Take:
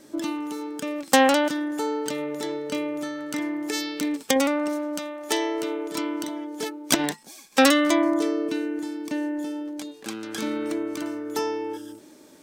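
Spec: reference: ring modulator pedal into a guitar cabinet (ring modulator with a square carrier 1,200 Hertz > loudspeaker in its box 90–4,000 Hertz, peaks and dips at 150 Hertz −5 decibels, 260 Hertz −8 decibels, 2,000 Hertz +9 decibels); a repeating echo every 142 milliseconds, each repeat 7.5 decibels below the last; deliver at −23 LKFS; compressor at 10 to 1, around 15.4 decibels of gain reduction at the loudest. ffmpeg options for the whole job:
ffmpeg -i in.wav -af "acompressor=threshold=-28dB:ratio=10,aecho=1:1:142|284|426|568|710:0.422|0.177|0.0744|0.0312|0.0131,aeval=exprs='val(0)*sgn(sin(2*PI*1200*n/s))':channel_layout=same,highpass=90,equalizer=frequency=150:width_type=q:width=4:gain=-5,equalizer=frequency=260:width_type=q:width=4:gain=-8,equalizer=frequency=2000:width_type=q:width=4:gain=9,lowpass=frequency=4000:width=0.5412,lowpass=frequency=4000:width=1.3066,volume=6.5dB" out.wav

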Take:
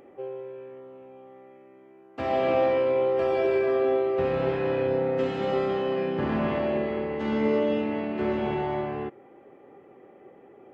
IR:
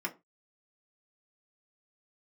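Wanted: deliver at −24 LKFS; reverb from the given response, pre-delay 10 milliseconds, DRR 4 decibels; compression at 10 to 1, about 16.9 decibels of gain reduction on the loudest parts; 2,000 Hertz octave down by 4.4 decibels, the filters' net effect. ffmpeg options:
-filter_complex "[0:a]equalizer=frequency=2000:width_type=o:gain=-5.5,acompressor=threshold=-38dB:ratio=10,asplit=2[link_01][link_02];[1:a]atrim=start_sample=2205,adelay=10[link_03];[link_02][link_03]afir=irnorm=-1:irlink=0,volume=-8dB[link_04];[link_01][link_04]amix=inputs=2:normalize=0,volume=17dB"

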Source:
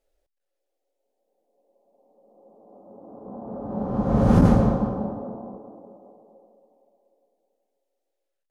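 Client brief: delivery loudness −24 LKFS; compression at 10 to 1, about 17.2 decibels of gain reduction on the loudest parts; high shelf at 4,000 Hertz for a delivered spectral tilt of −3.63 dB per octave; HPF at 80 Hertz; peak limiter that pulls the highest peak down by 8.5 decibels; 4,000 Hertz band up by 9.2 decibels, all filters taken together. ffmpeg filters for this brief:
ffmpeg -i in.wav -af "highpass=80,highshelf=frequency=4000:gain=8.5,equalizer=frequency=4000:width_type=o:gain=6.5,acompressor=threshold=-30dB:ratio=10,volume=15.5dB,alimiter=limit=-14dB:level=0:latency=1" out.wav

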